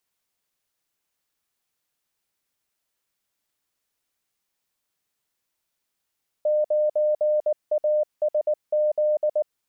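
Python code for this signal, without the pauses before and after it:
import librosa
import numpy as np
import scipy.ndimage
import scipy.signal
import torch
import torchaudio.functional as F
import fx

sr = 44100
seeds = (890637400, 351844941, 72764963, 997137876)

y = fx.morse(sr, text='9ASZ', wpm=19, hz=605.0, level_db=-18.0)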